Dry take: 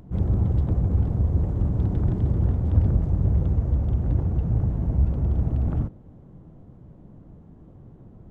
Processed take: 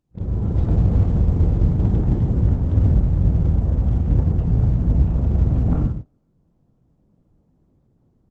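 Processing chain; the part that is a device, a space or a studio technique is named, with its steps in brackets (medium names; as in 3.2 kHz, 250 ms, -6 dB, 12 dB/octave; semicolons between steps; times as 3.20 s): speakerphone in a meeting room (reverberation RT60 0.45 s, pre-delay 19 ms, DRR 1.5 dB; speakerphone echo 330 ms, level -17 dB; level rider gain up to 14.5 dB; gate -21 dBFS, range -26 dB; trim -5 dB; Opus 12 kbps 48 kHz)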